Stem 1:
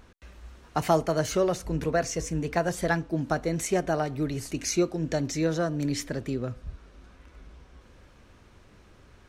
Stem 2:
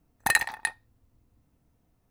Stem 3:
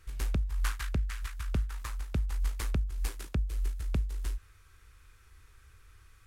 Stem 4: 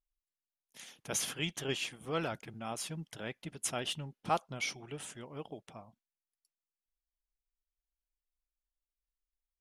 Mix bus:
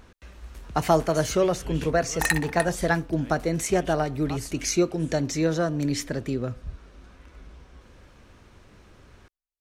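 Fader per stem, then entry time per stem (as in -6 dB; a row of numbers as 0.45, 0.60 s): +2.5, -1.5, -12.5, -7.5 dB; 0.00, 1.95, 0.35, 0.00 s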